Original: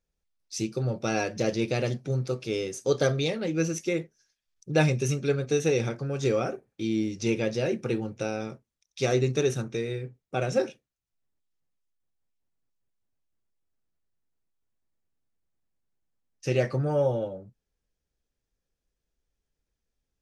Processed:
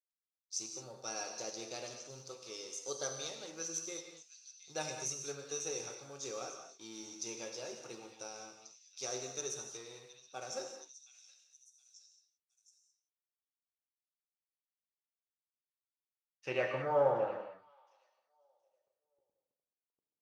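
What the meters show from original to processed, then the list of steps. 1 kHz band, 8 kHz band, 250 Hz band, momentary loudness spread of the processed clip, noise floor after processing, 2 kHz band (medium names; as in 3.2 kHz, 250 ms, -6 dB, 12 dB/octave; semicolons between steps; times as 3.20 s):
-5.5 dB, 0.0 dB, -21.0 dB, 16 LU, under -85 dBFS, -11.5 dB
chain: companding laws mixed up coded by A; resonant high shelf 1.5 kHz -11 dB, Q 1.5; on a send: repeats whose band climbs or falls 719 ms, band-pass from 3.4 kHz, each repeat 0.7 oct, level -10.5 dB; on the sum: band-pass sweep 6.1 kHz -> 470 Hz, 15.08–19.05 s; gated-style reverb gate 240 ms flat, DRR 4 dB; trim +11 dB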